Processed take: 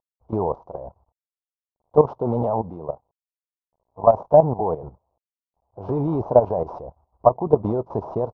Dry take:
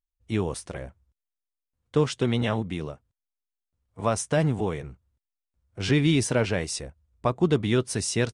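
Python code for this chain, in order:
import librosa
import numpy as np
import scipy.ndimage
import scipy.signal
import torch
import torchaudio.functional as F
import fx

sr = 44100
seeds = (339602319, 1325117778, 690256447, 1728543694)

y = fx.cvsd(x, sr, bps=32000)
y = fx.curve_eq(y, sr, hz=(280.0, 670.0, 960.0, 1800.0), db=(0, 14, 14, -30))
y = fx.level_steps(y, sr, step_db=13)
y = y * 10.0 ** (4.0 / 20.0)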